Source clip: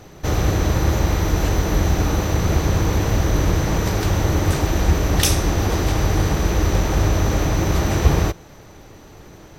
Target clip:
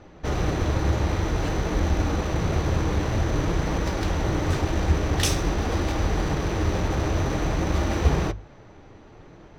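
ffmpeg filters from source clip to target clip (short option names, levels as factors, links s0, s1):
-af "bandreject=f=50:t=h:w=6,bandreject=f=100:t=h:w=6,bandreject=f=150:t=h:w=6,bandreject=f=200:t=h:w=6,flanger=delay=3.4:depth=6.7:regen=-56:speed=0.51:shape=sinusoidal,adynamicsmooth=sensitivity=7:basefreq=3400"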